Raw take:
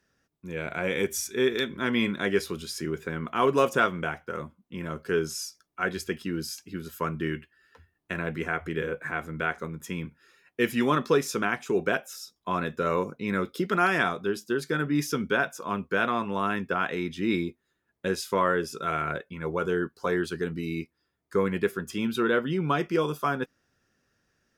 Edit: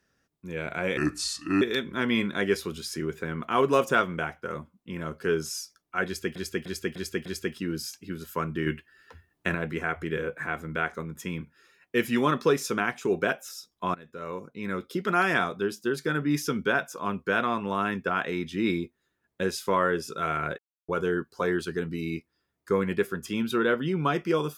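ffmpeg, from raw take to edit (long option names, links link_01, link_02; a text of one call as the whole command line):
ffmpeg -i in.wav -filter_complex "[0:a]asplit=12[link_01][link_02][link_03][link_04][link_05][link_06][link_07][link_08][link_09][link_10][link_11][link_12];[link_01]atrim=end=0.974[link_13];[link_02]atrim=start=0.97:end=1.46,asetpts=PTS-STARTPTS,asetrate=33516,aresample=44100[link_14];[link_03]atrim=start=1.456:end=6.202[link_15];[link_04]atrim=start=5.898:end=6.202[link_16];[link_05]atrim=start=5.898:end=6.202[link_17];[link_06]atrim=start=5.898:end=6.202[link_18];[link_07]atrim=start=5.898:end=7.312[link_19];[link_08]atrim=start=7.308:end=8.192,asetpts=PTS-STARTPTS,volume=5dB[link_20];[link_09]atrim=start=8.188:end=12.59,asetpts=PTS-STARTPTS,afade=type=out:start_time=4.398:duration=0.004:curve=hsin:silence=0.0891251[link_21];[link_10]atrim=start=12.59:end=19.23,asetpts=PTS-STARTPTS,afade=type=in:duration=1.32:silence=0.0891251,afade=type=out:start_time=6.636:duration=0.004:curve=hsin[link_22];[link_11]atrim=start=19.23:end=19.53,asetpts=PTS-STARTPTS,volume=0[link_23];[link_12]atrim=start=19.53,asetpts=PTS-STARTPTS,afade=type=in:duration=0.004:curve=hsin[link_24];[link_13][link_14]acrossfade=duration=0.004:curve1=hsin:curve2=hsin[link_25];[link_25][link_15]acrossfade=duration=0.004:curve1=hsin:curve2=hsin[link_26];[link_26][link_16]acrossfade=duration=0.004:curve1=hsin:curve2=hsin[link_27];[link_27][link_17]acrossfade=duration=0.004:curve1=hsin:curve2=hsin[link_28];[link_28][link_18]acrossfade=duration=0.004:curve1=hsin:curve2=hsin[link_29];[link_29][link_19]acrossfade=duration=0.004:curve1=hsin:curve2=hsin[link_30];[link_30][link_20]acrossfade=duration=0.004:curve1=hsin:curve2=hsin[link_31];[link_21][link_22][link_23][link_24]concat=n=4:v=0:a=1[link_32];[link_31][link_32]acrossfade=duration=0.004:curve1=hsin:curve2=hsin" out.wav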